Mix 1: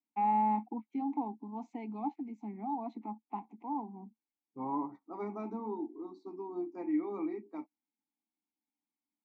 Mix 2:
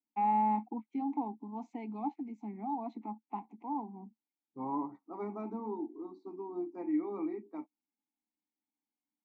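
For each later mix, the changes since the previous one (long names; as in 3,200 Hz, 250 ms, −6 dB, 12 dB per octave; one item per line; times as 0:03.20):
second voice: add high-shelf EQ 3,500 Hz −10.5 dB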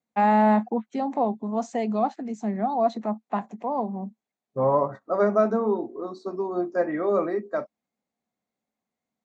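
master: remove formant filter u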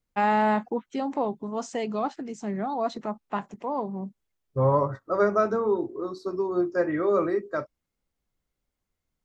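master: remove loudspeaker in its box 210–7,300 Hz, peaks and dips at 220 Hz +10 dB, 350 Hz −3 dB, 720 Hz +8 dB, 1,400 Hz −4 dB, 3,000 Hz −6 dB, 5,200 Hz −7 dB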